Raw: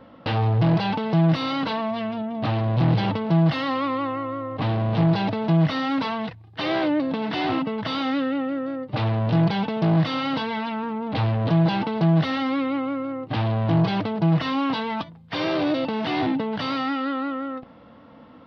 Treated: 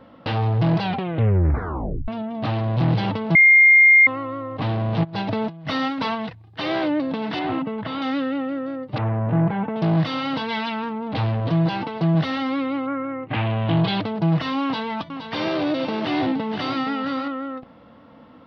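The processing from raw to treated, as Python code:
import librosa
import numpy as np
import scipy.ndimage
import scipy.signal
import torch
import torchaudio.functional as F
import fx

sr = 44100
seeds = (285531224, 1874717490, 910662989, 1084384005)

y = fx.over_compress(x, sr, threshold_db=-25.0, ratio=-0.5, at=(5.03, 6.14), fade=0.02)
y = fx.air_absorb(y, sr, metres=280.0, at=(7.39, 8.02))
y = fx.lowpass(y, sr, hz=2000.0, slope=24, at=(8.98, 9.76))
y = fx.high_shelf(y, sr, hz=2100.0, db=10.0, at=(10.48, 10.88), fade=0.02)
y = fx.notch_comb(y, sr, f0_hz=210.0, at=(11.4, 12.15))
y = fx.lowpass_res(y, sr, hz=fx.line((12.86, 1600.0), (14.01, 4100.0)), q=2.6, at=(12.86, 14.01), fade=0.02)
y = fx.echo_single(y, sr, ms=469, db=-8.5, at=(14.63, 17.28))
y = fx.edit(y, sr, fx.tape_stop(start_s=0.82, length_s=1.26),
    fx.bleep(start_s=3.35, length_s=0.72, hz=2120.0, db=-8.5), tone=tone)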